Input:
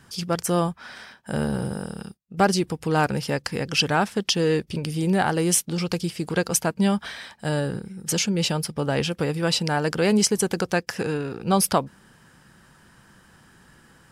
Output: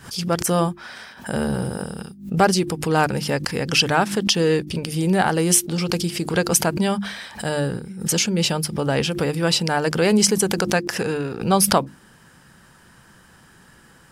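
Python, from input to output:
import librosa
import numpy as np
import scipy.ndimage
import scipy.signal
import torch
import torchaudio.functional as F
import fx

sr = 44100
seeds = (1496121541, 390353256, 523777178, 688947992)

y = fx.high_shelf(x, sr, hz=8800.0, db=3.0)
y = fx.hum_notches(y, sr, base_hz=50, count=7)
y = fx.pre_swell(y, sr, db_per_s=130.0)
y = F.gain(torch.from_numpy(y), 3.0).numpy()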